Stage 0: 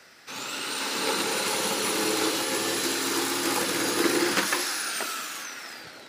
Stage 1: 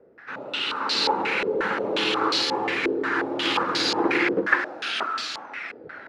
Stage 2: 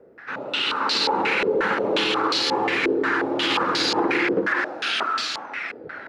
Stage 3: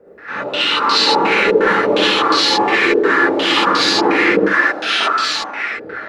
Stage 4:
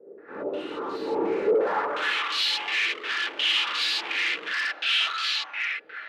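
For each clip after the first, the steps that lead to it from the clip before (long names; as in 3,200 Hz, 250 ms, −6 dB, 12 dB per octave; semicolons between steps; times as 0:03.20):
low-pass on a step sequencer 5.6 Hz 450–4,400 Hz
brickwall limiter −16.5 dBFS, peak gain reduction 11.5 dB; level +4 dB
reverb whose tail is shaped and stops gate 90 ms rising, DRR −6 dB; level +1.5 dB
gain into a clipping stage and back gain 16 dB; band-pass filter sweep 380 Hz → 2,900 Hz, 0:01.43–0:02.33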